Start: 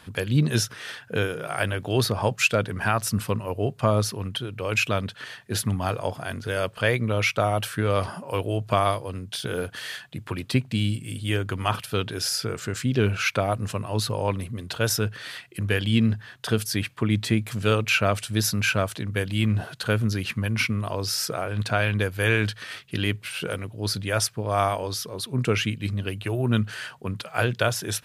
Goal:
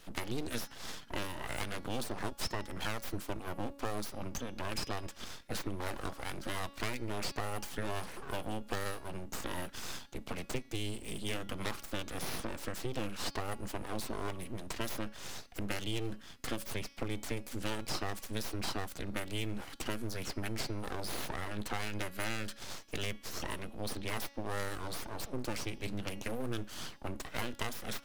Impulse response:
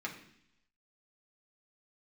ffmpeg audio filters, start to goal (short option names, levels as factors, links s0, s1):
-filter_complex "[0:a]aeval=exprs='abs(val(0))':c=same,bandreject=f=280.1:t=h:w=4,bandreject=f=560.2:t=h:w=4,bandreject=f=840.3:t=h:w=4,bandreject=f=1120.4:t=h:w=4,bandreject=f=1400.5:t=h:w=4,bandreject=f=1680.6:t=h:w=4,bandreject=f=1960.7:t=h:w=4,bandreject=f=2240.8:t=h:w=4,bandreject=f=2520.9:t=h:w=4,bandreject=f=2801:t=h:w=4,bandreject=f=3081.1:t=h:w=4,bandreject=f=3361.2:t=h:w=4,bandreject=f=3641.3:t=h:w=4,bandreject=f=3921.4:t=h:w=4,bandreject=f=4201.5:t=h:w=4,bandreject=f=4481.6:t=h:w=4,bandreject=f=4761.7:t=h:w=4,bandreject=f=5041.8:t=h:w=4,bandreject=f=5321.9:t=h:w=4,bandreject=f=5602:t=h:w=4,bandreject=f=5882.1:t=h:w=4,bandreject=f=6162.2:t=h:w=4,acrossover=split=86|5300[s0][s1][s2];[s0]acompressor=threshold=0.0158:ratio=4[s3];[s1]acompressor=threshold=0.0224:ratio=4[s4];[s2]acompressor=threshold=0.00794:ratio=4[s5];[s3][s4][s5]amix=inputs=3:normalize=0,volume=0.668"